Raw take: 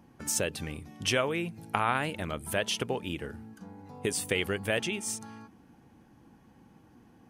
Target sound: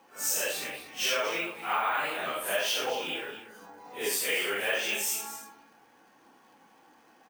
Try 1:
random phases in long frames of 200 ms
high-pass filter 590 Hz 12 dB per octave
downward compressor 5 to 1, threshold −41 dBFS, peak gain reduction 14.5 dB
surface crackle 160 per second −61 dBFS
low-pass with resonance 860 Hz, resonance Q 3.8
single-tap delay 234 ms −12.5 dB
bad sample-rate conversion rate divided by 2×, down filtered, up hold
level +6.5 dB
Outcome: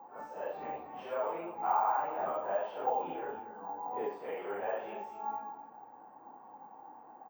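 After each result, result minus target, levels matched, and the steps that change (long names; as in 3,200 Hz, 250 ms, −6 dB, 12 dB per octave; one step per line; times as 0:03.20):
1,000 Hz band +8.5 dB; downward compressor: peak gain reduction +7 dB
remove: low-pass with resonance 860 Hz, resonance Q 3.8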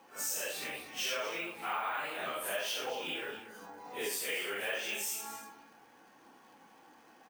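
downward compressor: peak gain reduction +7 dB
change: downward compressor 5 to 1, threshold −32 dBFS, peak gain reduction 7.5 dB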